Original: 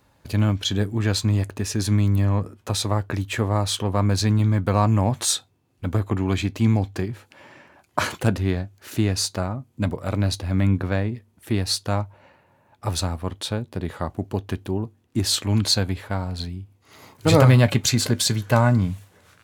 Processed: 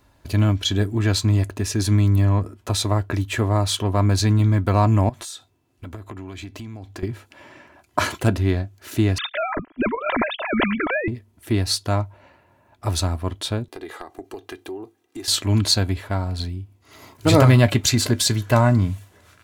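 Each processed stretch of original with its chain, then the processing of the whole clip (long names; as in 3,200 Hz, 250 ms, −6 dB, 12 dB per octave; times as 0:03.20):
0:05.09–0:07.03: low-shelf EQ 200 Hz −5 dB + downward compressor, threshold −34 dBFS
0:09.18–0:11.08: three sine waves on the formant tracks + every bin compressed towards the loudest bin 2 to 1
0:13.68–0:15.28: high-pass filter 330 Hz + downward compressor 5 to 1, threshold −34 dBFS + comb filter 2.5 ms, depth 58%
whole clip: low-shelf EQ 70 Hz +7 dB; comb filter 3 ms, depth 37%; level +1 dB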